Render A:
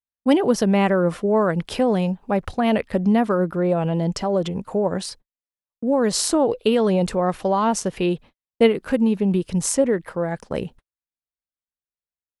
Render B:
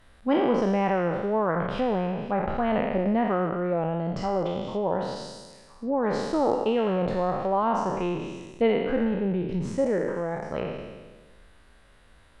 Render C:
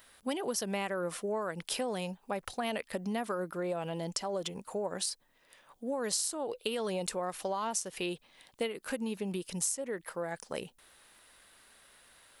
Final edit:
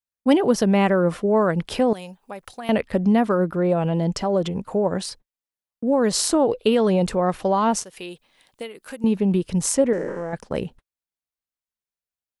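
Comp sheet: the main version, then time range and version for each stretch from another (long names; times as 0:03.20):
A
0:01.93–0:02.69: punch in from C
0:07.84–0:09.04: punch in from C
0:09.93–0:10.33: punch in from B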